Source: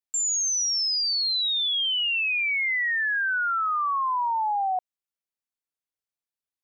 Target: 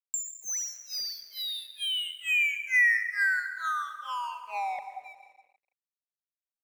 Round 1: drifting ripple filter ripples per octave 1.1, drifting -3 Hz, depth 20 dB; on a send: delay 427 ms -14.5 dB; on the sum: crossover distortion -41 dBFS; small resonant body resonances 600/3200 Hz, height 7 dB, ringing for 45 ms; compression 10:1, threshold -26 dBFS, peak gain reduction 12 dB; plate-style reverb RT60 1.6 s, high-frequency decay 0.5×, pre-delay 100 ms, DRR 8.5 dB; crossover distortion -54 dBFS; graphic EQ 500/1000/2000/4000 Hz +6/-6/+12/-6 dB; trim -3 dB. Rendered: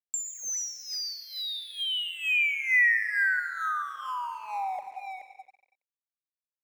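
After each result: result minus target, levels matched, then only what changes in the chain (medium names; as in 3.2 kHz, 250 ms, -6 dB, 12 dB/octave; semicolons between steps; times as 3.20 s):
first crossover distortion: distortion -10 dB; second crossover distortion: distortion +5 dB
change: first crossover distortion -30 dBFS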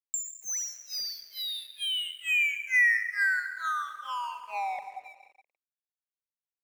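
second crossover distortion: distortion +7 dB
change: second crossover distortion -61 dBFS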